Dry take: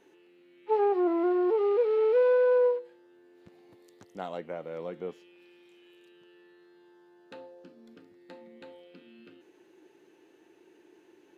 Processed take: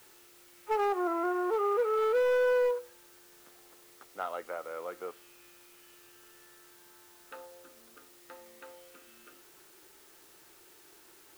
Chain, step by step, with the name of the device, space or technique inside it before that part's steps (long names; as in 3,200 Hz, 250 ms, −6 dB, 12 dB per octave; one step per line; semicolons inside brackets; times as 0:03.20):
drive-through speaker (band-pass filter 500–3,000 Hz; parametric band 1,300 Hz +12 dB 0.38 octaves; hard clipping −23.5 dBFS, distortion −17 dB; white noise bed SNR 24 dB)